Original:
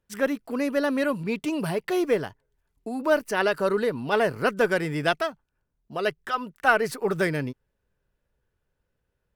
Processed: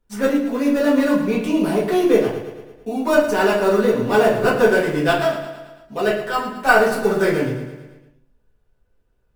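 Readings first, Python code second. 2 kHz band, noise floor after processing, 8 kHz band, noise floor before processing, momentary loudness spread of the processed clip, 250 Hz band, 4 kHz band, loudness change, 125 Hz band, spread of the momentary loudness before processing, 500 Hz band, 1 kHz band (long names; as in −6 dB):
+5.5 dB, −64 dBFS, +7.0 dB, −78 dBFS, 13 LU, +9.0 dB, +5.0 dB, +7.5 dB, +5.5 dB, 8 LU, +8.0 dB, +6.5 dB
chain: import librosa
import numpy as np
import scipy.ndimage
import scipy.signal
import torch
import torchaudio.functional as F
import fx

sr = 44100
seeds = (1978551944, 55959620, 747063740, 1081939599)

p1 = fx.sample_hold(x, sr, seeds[0], rate_hz=3100.0, jitter_pct=0)
p2 = x + F.gain(torch.from_numpy(p1), -9.5).numpy()
p3 = fx.echo_feedback(p2, sr, ms=111, feedback_pct=57, wet_db=-11)
p4 = fx.room_shoebox(p3, sr, seeds[1], volume_m3=31.0, walls='mixed', distance_m=1.1)
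y = F.gain(torch.from_numpy(p4), -3.0).numpy()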